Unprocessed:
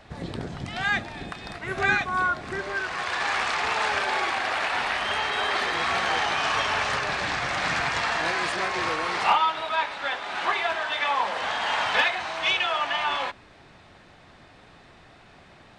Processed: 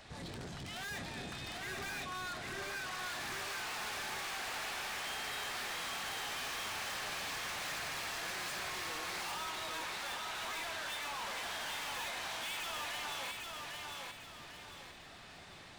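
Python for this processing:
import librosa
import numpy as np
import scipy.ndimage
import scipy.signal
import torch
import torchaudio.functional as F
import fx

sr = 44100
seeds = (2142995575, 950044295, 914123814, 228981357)

y = fx.high_shelf(x, sr, hz=3000.0, db=12.0)
y = 10.0 ** (-35.0 / 20.0) * np.tanh(y / 10.0 ** (-35.0 / 20.0))
y = fx.echo_feedback(y, sr, ms=800, feedback_pct=38, wet_db=-3.5)
y = y * 10.0 ** (-6.5 / 20.0)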